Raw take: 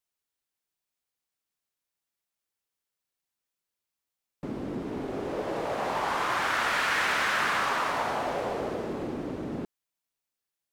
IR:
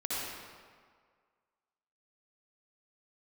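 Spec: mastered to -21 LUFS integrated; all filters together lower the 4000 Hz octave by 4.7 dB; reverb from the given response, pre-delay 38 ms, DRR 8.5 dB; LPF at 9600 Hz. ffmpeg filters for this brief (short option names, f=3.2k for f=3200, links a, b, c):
-filter_complex "[0:a]lowpass=9.6k,equalizer=f=4k:t=o:g=-6.5,asplit=2[a][b];[1:a]atrim=start_sample=2205,adelay=38[c];[b][c]afir=irnorm=-1:irlink=0,volume=-14.5dB[d];[a][d]amix=inputs=2:normalize=0,volume=8dB"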